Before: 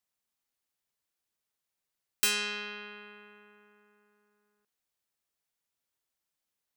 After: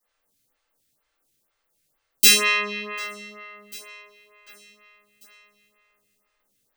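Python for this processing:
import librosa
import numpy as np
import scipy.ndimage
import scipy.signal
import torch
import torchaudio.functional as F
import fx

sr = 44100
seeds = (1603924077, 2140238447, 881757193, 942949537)

p1 = x + fx.echo_feedback(x, sr, ms=745, feedback_pct=52, wet_db=-19.5, dry=0)
p2 = fx.room_shoebox(p1, sr, seeds[0], volume_m3=44.0, walls='mixed', distance_m=2.5)
p3 = fx.stagger_phaser(p2, sr, hz=2.1)
y = p3 * librosa.db_to_amplitude(5.0)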